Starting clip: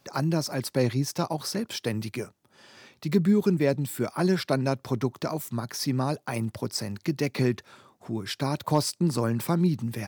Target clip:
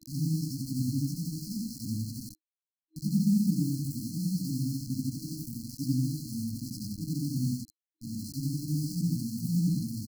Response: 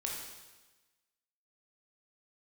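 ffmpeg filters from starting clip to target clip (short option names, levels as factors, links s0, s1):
-filter_complex "[0:a]afftfilt=real='re':imag='-im':win_size=8192:overlap=0.75,acrossover=split=120|2800[s0][s1][s2];[s2]acompressor=threshold=0.00158:ratio=6[s3];[s0][s1][s3]amix=inputs=3:normalize=0,bandreject=f=60:t=h:w=6,bandreject=f=120:t=h:w=6,bandreject=f=180:t=h:w=6,bandreject=f=240:t=h:w=6,bandreject=f=300:t=h:w=6,acrossover=split=1100[s4][s5];[s5]adelay=50[s6];[s4][s6]amix=inputs=2:normalize=0,acrusher=bits=6:mix=0:aa=0.000001,afftfilt=real='re*(1-between(b*sr/4096,320,4100))':imag='im*(1-between(b*sr/4096,320,4100))':win_size=4096:overlap=0.75,volume=1.41"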